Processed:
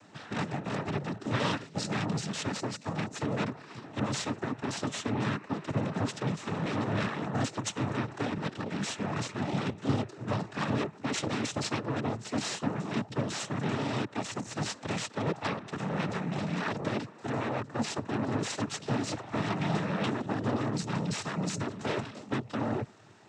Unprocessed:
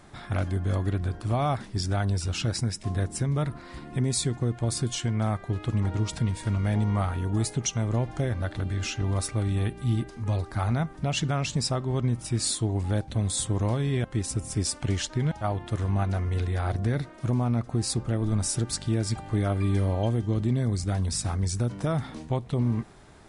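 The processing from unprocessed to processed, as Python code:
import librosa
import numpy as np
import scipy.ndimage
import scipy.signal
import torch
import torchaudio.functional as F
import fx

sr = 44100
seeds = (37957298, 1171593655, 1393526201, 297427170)

y = fx.cheby_harmonics(x, sr, harmonics=(5, 7, 8), levels_db=(-17, -6, -7), full_scale_db=-15.0)
y = fx.noise_vocoder(y, sr, seeds[0], bands=12)
y = F.gain(torch.from_numpy(y), -8.0).numpy()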